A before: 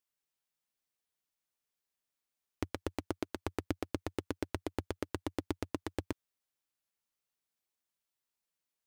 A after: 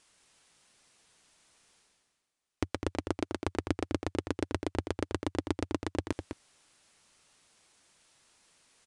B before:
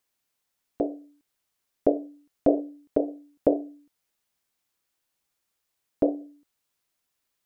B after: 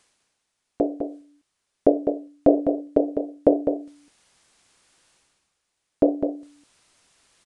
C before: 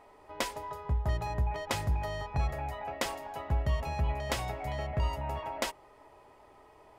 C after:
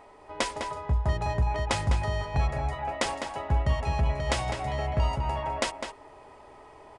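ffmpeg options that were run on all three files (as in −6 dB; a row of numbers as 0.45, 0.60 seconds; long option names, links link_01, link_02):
-filter_complex "[0:a]areverse,acompressor=mode=upward:threshold=-50dB:ratio=2.5,areverse,aresample=22050,aresample=44100,asplit=2[link_01][link_02];[link_02]adelay=204.1,volume=-7dB,highshelf=frequency=4000:gain=-4.59[link_03];[link_01][link_03]amix=inputs=2:normalize=0,volume=4.5dB"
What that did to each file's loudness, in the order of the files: +5.0, +4.5, +5.0 LU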